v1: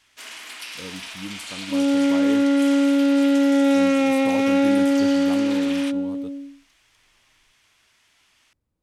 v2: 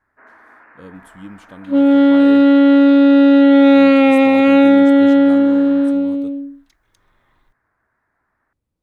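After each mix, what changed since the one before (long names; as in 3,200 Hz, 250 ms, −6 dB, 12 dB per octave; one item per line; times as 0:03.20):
first sound: add elliptic low-pass filter 1,700 Hz, stop band 50 dB
second sound +8.5 dB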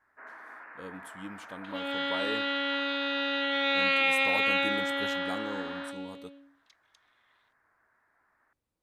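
second sound: add resonant band-pass 3,300 Hz, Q 1.1
master: add low-shelf EQ 310 Hz −12 dB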